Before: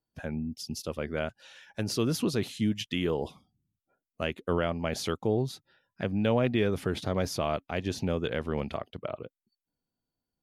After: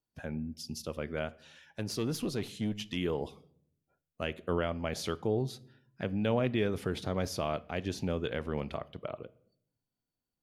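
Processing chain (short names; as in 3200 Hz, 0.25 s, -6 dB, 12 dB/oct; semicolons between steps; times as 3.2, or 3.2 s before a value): 1.27–2.97 tube stage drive 21 dB, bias 0.4; on a send: reverb RT60 0.65 s, pre-delay 7 ms, DRR 17 dB; on the sum: gain -3.5 dB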